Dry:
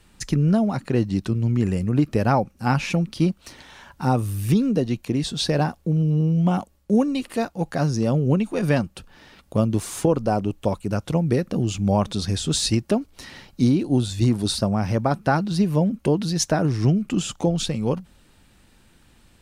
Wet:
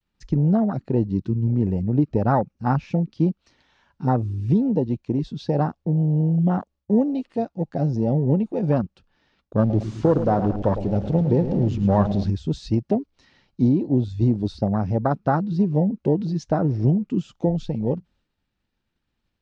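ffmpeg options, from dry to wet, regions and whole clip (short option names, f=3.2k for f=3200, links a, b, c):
-filter_complex "[0:a]asettb=1/sr,asplit=3[a][b][c];[a]atrim=end=9.594[d];[b]atrim=start=9.59:end=12.3,asetpts=PTS-STARTPTS,afade=t=in:d=0.004:c=qsin,afade=t=out:st=2.706:d=0.004:c=qsin,aeval=exprs='val(0)+0.5*0.0473*sgn(val(0))':c=same,adynamicsmooth=sensitivity=7.5:basefreq=6.5k,aecho=1:1:109|218|327|436|545|654|763:0.335|0.198|0.117|0.0688|0.0406|0.0239|0.0141,atrim=end_sample=119511[e];[c]atrim=start=12.296[f];[d][e]acrossfade=d=0.004:c1=hsin:c2=qsin[g];[g][f]acrossfade=d=0.004:c1=qsin:c2=hsin,lowpass=f=5.8k:w=0.5412,lowpass=f=5.8k:w=1.3066,agate=range=-33dB:threshold=-49dB:ratio=3:detection=peak,afwtdn=0.0708"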